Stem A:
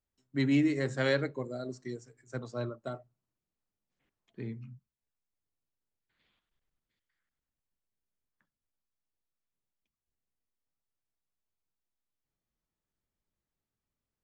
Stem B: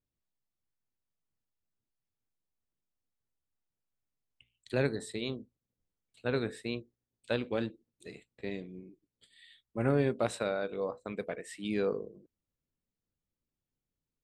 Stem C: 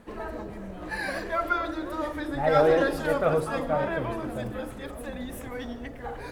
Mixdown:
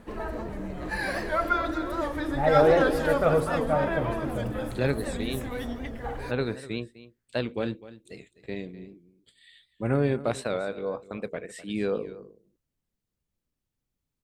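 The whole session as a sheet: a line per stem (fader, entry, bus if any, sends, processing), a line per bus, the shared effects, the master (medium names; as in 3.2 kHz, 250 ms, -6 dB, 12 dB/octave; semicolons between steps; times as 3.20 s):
-5.0 dB, 0.00 s, no send, no echo send, compression, threshold -36 dBFS, peak gain reduction 13.5 dB; attacks held to a fixed rise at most 140 dB/s
+2.5 dB, 0.05 s, no send, echo send -16.5 dB, none
+1.0 dB, 0.00 s, no send, echo send -12 dB, none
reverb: none
echo: delay 252 ms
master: bass shelf 130 Hz +4.5 dB; warped record 78 rpm, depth 100 cents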